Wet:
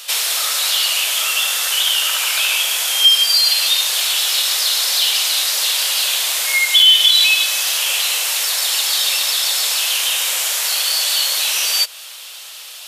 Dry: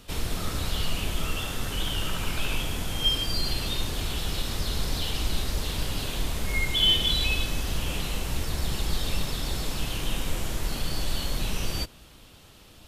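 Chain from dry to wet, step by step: steep high-pass 510 Hz 36 dB/oct; in parallel at +2 dB: compressor, threshold -38 dBFS, peak gain reduction 18 dB; on the sum: tilt shelf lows -9.5 dB, about 1400 Hz; maximiser +8 dB; gain -1 dB

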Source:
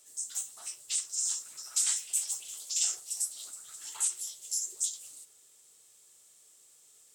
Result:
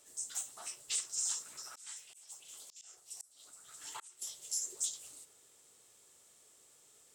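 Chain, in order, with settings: high shelf 2700 Hz -10 dB; 1.65–4.22 auto swell 0.754 s; hard clip -30.5 dBFS, distortion -26 dB; gain +5 dB

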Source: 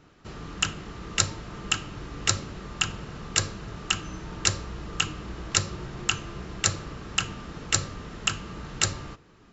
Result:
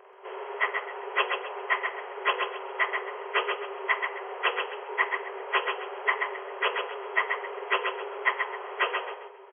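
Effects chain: inharmonic rescaling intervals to 85%; tilt -3 dB/oct; in parallel at -3 dB: compressor, threshold -35 dBFS, peak gain reduction 15.5 dB; on the sum: FFT band-pass 370–3300 Hz; on a send: feedback echo 0.132 s, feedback 28%, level -5 dB; on the sum: gain +5 dB

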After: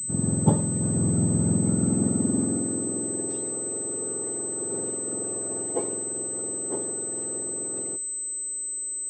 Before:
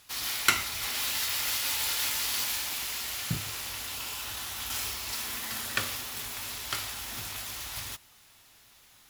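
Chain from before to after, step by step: spectrum mirrored in octaves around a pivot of 1100 Hz; high-pass sweep 160 Hz -> 400 Hz, 1.36–3.6; pulse-width modulation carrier 8100 Hz; gain -3.5 dB

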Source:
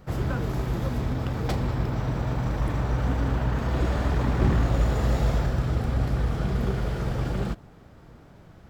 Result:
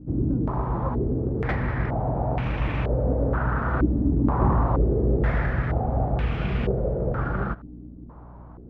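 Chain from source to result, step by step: hum 60 Hz, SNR 20 dB; stepped low-pass 2.1 Hz 290–2600 Hz

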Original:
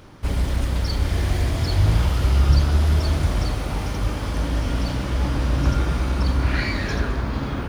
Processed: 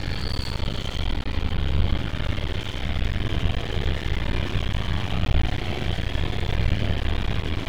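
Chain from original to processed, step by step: Paulstretch 12×, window 0.05 s, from 0.87; resonant high shelf 4700 Hz -13 dB, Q 3; half-wave rectifier

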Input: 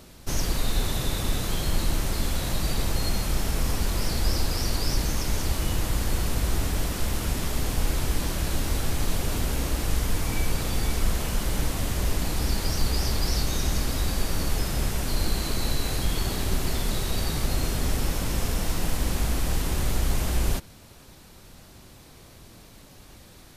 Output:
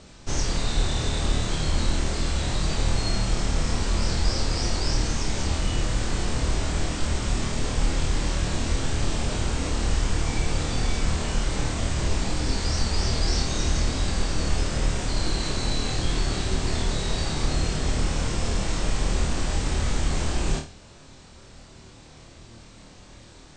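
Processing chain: steep low-pass 8600 Hz 96 dB/oct; flutter echo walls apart 4.5 m, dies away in 0.34 s

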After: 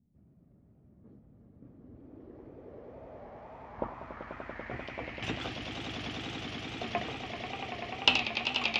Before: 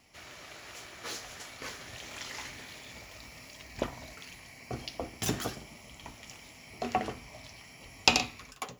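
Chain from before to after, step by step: swelling echo 97 ms, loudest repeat 8, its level -8.5 dB; wow and flutter 110 cents; low-pass sweep 200 Hz -> 3100 Hz, 1.53–5.48; gain -5 dB

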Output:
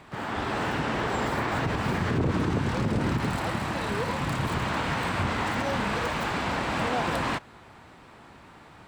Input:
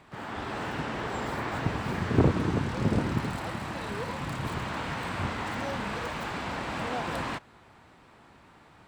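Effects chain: limiter -23 dBFS, peak gain reduction 12 dB; gain +5.5 dB

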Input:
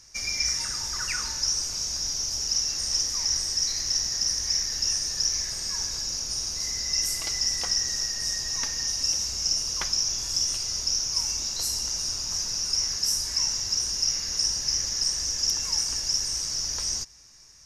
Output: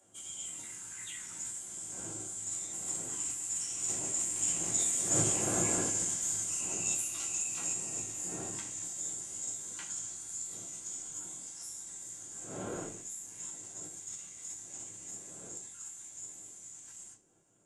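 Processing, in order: wind noise 390 Hz -36 dBFS; Doppler pass-by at 5.56, 6 m/s, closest 4.5 m; reverb RT60 0.40 s, pre-delay 8 ms, DRR -3.5 dB; in parallel at -1 dB: compressor, threshold -39 dBFS, peak gain reduction 18.5 dB; on the sum: LPF 8500 Hz 24 dB/oct; bell 520 Hz -9.5 dB 0.23 oct; notch 1800 Hz, Q 6.7; formant shift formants +5 st; gain -6 dB

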